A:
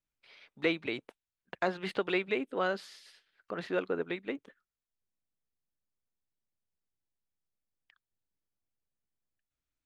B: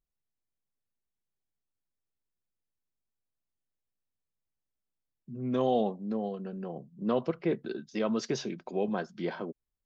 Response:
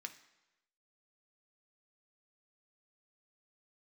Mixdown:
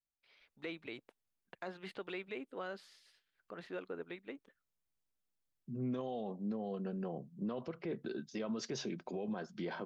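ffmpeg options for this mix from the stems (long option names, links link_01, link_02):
-filter_complex "[0:a]volume=-10.5dB[link_01];[1:a]alimiter=limit=-23.5dB:level=0:latency=1:release=233,adelay=400,volume=-1dB[link_02];[link_01][link_02]amix=inputs=2:normalize=0,alimiter=level_in=7.5dB:limit=-24dB:level=0:latency=1:release=33,volume=-7.5dB"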